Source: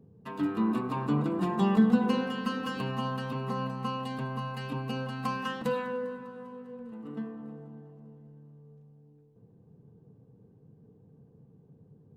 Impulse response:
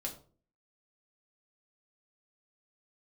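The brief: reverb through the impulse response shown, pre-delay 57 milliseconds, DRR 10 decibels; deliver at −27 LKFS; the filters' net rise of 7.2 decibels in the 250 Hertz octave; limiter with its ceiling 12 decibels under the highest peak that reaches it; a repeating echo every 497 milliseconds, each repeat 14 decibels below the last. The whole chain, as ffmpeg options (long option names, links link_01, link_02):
-filter_complex "[0:a]equalizer=frequency=250:width_type=o:gain=8.5,alimiter=limit=-17.5dB:level=0:latency=1,aecho=1:1:497|994:0.2|0.0399,asplit=2[link_01][link_02];[1:a]atrim=start_sample=2205,adelay=57[link_03];[link_02][link_03]afir=irnorm=-1:irlink=0,volume=-10dB[link_04];[link_01][link_04]amix=inputs=2:normalize=0,volume=1dB"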